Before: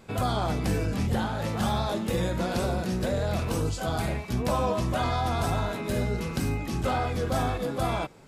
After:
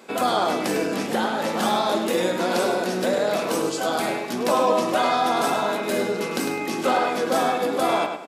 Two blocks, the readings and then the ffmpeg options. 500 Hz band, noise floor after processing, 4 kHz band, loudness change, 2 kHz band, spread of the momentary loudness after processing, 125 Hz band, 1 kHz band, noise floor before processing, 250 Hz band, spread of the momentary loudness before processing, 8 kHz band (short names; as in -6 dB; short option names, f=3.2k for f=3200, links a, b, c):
+8.0 dB, -29 dBFS, +7.5 dB, +5.5 dB, +8.0 dB, 4 LU, -11.0 dB, +8.0 dB, -36 dBFS, +4.0 dB, 3 LU, +7.5 dB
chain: -filter_complex "[0:a]highpass=f=250:w=0.5412,highpass=f=250:w=1.3066,acontrast=85,asplit=2[a][b];[b]adelay=103,lowpass=f=4.8k:p=1,volume=-6dB,asplit=2[c][d];[d]adelay=103,lowpass=f=4.8k:p=1,volume=0.34,asplit=2[e][f];[f]adelay=103,lowpass=f=4.8k:p=1,volume=0.34,asplit=2[g][h];[h]adelay=103,lowpass=f=4.8k:p=1,volume=0.34[i];[c][e][g][i]amix=inputs=4:normalize=0[j];[a][j]amix=inputs=2:normalize=0"